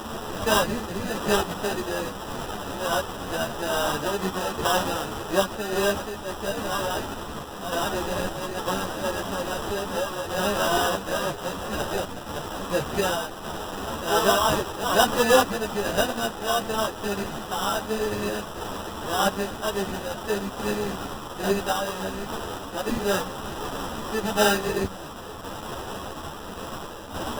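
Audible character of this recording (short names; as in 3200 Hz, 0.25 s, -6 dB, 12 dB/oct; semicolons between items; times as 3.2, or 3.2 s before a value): a quantiser's noise floor 6-bit, dither triangular; random-step tremolo; aliases and images of a low sample rate 2200 Hz, jitter 0%; a shimmering, thickened sound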